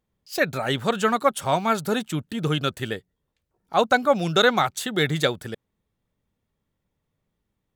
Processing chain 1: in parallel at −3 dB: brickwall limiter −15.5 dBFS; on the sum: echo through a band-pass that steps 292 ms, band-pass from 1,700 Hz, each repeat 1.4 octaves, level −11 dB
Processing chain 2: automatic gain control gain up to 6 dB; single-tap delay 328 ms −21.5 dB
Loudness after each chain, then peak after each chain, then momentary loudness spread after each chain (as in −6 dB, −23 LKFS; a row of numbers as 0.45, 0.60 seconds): −20.0, −19.5 LKFS; −3.0, −2.0 dBFS; 10, 10 LU